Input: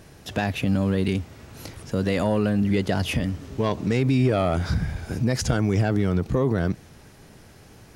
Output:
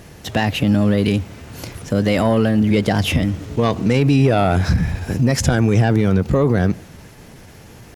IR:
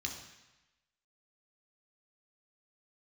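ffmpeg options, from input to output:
-filter_complex "[0:a]acontrast=74,asplit=2[s0][s1];[1:a]atrim=start_sample=2205,asetrate=37044,aresample=44100,lowpass=2800[s2];[s1][s2]afir=irnorm=-1:irlink=0,volume=0.0944[s3];[s0][s3]amix=inputs=2:normalize=0,asetrate=46722,aresample=44100,atempo=0.943874"

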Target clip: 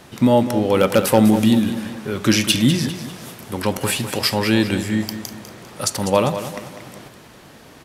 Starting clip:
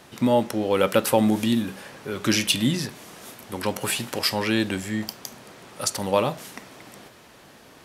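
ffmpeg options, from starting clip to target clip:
-filter_complex "[0:a]lowshelf=f=230:g=6,aeval=exprs='0.473*(abs(mod(val(0)/0.473+3,4)-2)-1)':c=same,asplit=2[s0][s1];[s1]aecho=0:1:199|398|597|796:0.282|0.116|0.0474|0.0194[s2];[s0][s2]amix=inputs=2:normalize=0,volume=1.5"

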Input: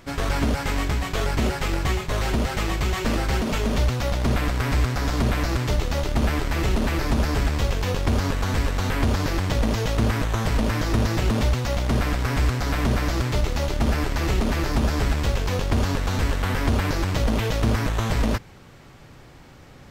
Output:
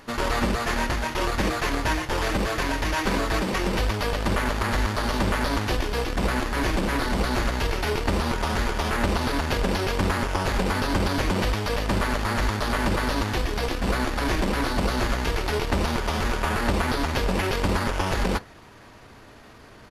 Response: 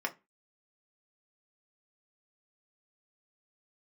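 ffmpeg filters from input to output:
-filter_complex "[0:a]asplit=2[s0][s1];[1:a]atrim=start_sample=2205,afade=t=out:st=0.15:d=0.01,atrim=end_sample=7056,highshelf=f=8600:g=11.5[s2];[s1][s2]afir=irnorm=-1:irlink=0,volume=0.266[s3];[s0][s3]amix=inputs=2:normalize=0,asetrate=37084,aresample=44100,atempo=1.18921,bass=f=250:g=-4,treble=f=4000:g=0"

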